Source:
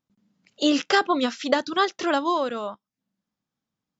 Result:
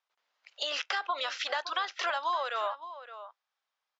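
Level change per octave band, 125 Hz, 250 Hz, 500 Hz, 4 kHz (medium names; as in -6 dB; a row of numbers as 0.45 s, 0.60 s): no reading, -34.0 dB, -13.0 dB, -5.0 dB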